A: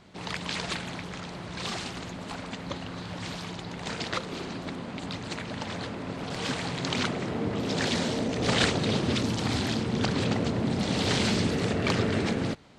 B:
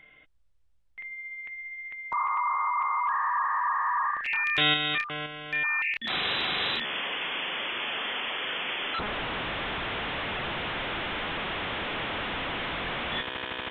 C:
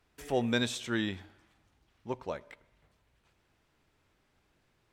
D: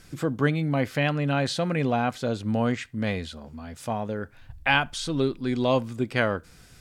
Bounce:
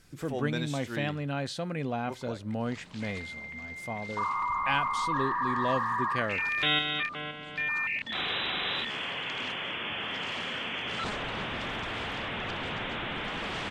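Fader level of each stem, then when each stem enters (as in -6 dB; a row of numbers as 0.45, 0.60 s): -16.5, -3.0, -5.5, -8.0 dB; 2.45, 2.05, 0.00, 0.00 s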